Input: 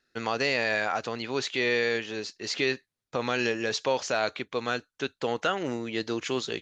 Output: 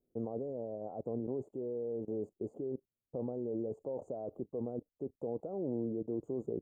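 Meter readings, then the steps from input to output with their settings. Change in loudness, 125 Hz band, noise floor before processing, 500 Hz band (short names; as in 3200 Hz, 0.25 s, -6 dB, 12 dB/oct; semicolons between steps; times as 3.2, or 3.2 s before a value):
-11.0 dB, -4.5 dB, under -85 dBFS, -8.0 dB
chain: level quantiser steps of 20 dB; inverse Chebyshev band-stop 1600–5700 Hz, stop band 60 dB; gain +5 dB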